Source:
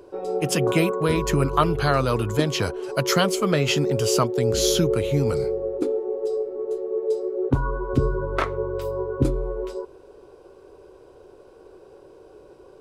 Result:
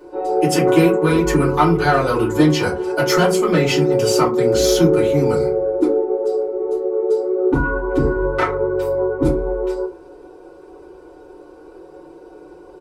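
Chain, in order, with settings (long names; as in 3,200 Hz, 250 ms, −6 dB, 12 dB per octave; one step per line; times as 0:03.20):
parametric band 130 Hz −10.5 dB 0.77 octaves
comb filter 5.5 ms, depth 48%
soft clipping −13 dBFS, distortion −18 dB
feedback delay network reverb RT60 0.32 s, low-frequency decay 1.5×, high-frequency decay 0.5×, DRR −8 dB
level −3 dB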